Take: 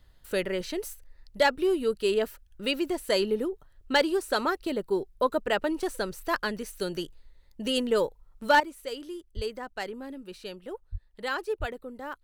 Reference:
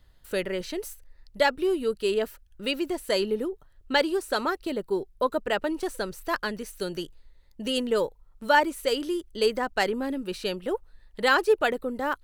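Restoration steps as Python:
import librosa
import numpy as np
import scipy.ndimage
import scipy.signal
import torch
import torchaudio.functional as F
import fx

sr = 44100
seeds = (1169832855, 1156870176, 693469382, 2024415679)

y = fx.fix_declip(x, sr, threshold_db=-13.5)
y = fx.highpass(y, sr, hz=140.0, slope=24, at=(9.35, 9.47), fade=0.02)
y = fx.highpass(y, sr, hz=140.0, slope=24, at=(10.91, 11.03), fade=0.02)
y = fx.highpass(y, sr, hz=140.0, slope=24, at=(11.59, 11.71), fade=0.02)
y = fx.gain(y, sr, db=fx.steps((0.0, 0.0), (8.6, 10.0)))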